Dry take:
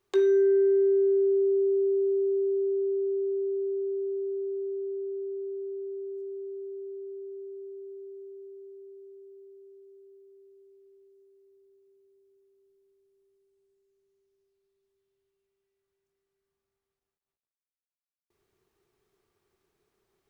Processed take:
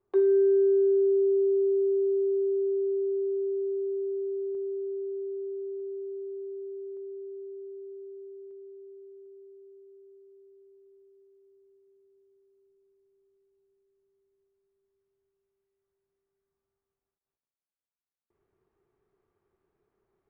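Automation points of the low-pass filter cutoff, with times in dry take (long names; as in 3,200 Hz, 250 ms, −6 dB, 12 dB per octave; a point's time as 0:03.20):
1,000 Hz
from 0:04.55 1,500 Hz
from 0:05.80 1,900 Hz
from 0:06.97 1,300 Hz
from 0:08.51 2,100 Hz
from 0:09.26 1,500 Hz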